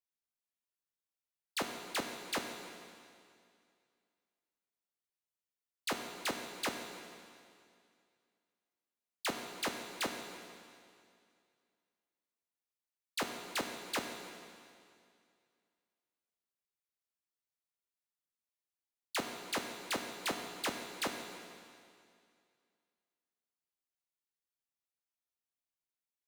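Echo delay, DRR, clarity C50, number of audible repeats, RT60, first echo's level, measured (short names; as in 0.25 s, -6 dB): none, 3.5 dB, 4.5 dB, none, 2.3 s, none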